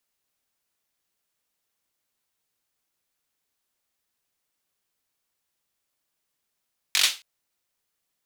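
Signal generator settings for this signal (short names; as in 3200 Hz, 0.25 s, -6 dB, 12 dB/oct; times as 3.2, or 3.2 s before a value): hand clap length 0.27 s, bursts 5, apart 21 ms, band 3500 Hz, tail 0.27 s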